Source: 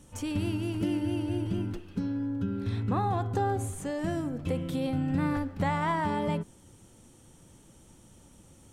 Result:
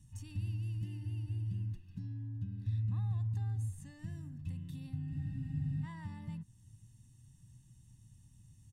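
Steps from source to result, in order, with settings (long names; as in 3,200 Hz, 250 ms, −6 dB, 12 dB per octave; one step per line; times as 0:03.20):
parametric band 120 Hz +13 dB 0.67 octaves
in parallel at −0.5 dB: downward compressor, threshold −36 dBFS, peak gain reduction 17 dB
on the sum: guitar amp tone stack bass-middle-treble 6-0-2
comb filter 1.1 ms, depth 87%
frozen spectrum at 0:05.13, 0.71 s
level −5 dB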